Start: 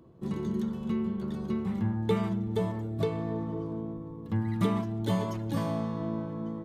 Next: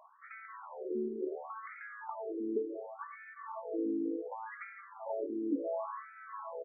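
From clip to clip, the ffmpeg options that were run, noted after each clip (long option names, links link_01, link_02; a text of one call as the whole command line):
ffmpeg -i in.wav -filter_complex "[0:a]aecho=1:1:175:0.0794,acrossover=split=310|960[link_01][link_02][link_03];[link_01]acompressor=threshold=-39dB:ratio=4[link_04];[link_02]acompressor=threshold=-47dB:ratio=4[link_05];[link_03]acompressor=threshold=-54dB:ratio=4[link_06];[link_04][link_05][link_06]amix=inputs=3:normalize=0,afftfilt=real='re*between(b*sr/1024,320*pow(1800/320,0.5+0.5*sin(2*PI*0.69*pts/sr))/1.41,320*pow(1800/320,0.5+0.5*sin(2*PI*0.69*pts/sr))*1.41)':imag='im*between(b*sr/1024,320*pow(1800/320,0.5+0.5*sin(2*PI*0.69*pts/sr))/1.41,320*pow(1800/320,0.5+0.5*sin(2*PI*0.69*pts/sr))*1.41)':win_size=1024:overlap=0.75,volume=11.5dB" out.wav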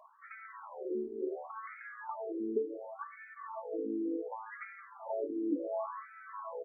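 ffmpeg -i in.wav -af "flanger=delay=1.7:depth=7.4:regen=-24:speed=0.31:shape=triangular,volume=3.5dB" out.wav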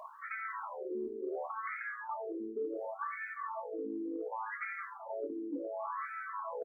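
ffmpeg -i in.wav -filter_complex "[0:a]areverse,acompressor=threshold=-47dB:ratio=10,areverse,asplit=2[link_01][link_02];[link_02]adelay=25,volume=-13dB[link_03];[link_01][link_03]amix=inputs=2:normalize=0,volume=10.5dB" out.wav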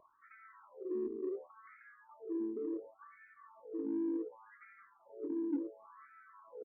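ffmpeg -i in.wav -filter_complex "[0:a]firequalizer=gain_entry='entry(210,0);entry(310,6);entry(670,-24);entry(1300,-18);entry(3000,-23)':delay=0.05:min_phase=1,asplit=2[link_01][link_02];[link_02]asoftclip=type=tanh:threshold=-37.5dB,volume=-7.5dB[link_03];[link_01][link_03]amix=inputs=2:normalize=0,volume=-2dB" out.wav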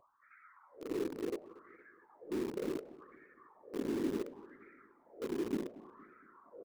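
ffmpeg -i in.wav -filter_complex "[0:a]afftfilt=real='hypot(re,im)*cos(2*PI*random(0))':imag='hypot(re,im)*sin(2*PI*random(1))':win_size=512:overlap=0.75,asplit=2[link_01][link_02];[link_02]acrusher=bits=6:mix=0:aa=0.000001,volume=-7dB[link_03];[link_01][link_03]amix=inputs=2:normalize=0,asplit=2[link_04][link_05];[link_05]adelay=232,lowpass=frequency=2200:poles=1,volume=-18dB,asplit=2[link_06][link_07];[link_07]adelay=232,lowpass=frequency=2200:poles=1,volume=0.49,asplit=2[link_08][link_09];[link_09]adelay=232,lowpass=frequency=2200:poles=1,volume=0.49,asplit=2[link_10][link_11];[link_11]adelay=232,lowpass=frequency=2200:poles=1,volume=0.49[link_12];[link_04][link_06][link_08][link_10][link_12]amix=inputs=5:normalize=0,volume=3dB" out.wav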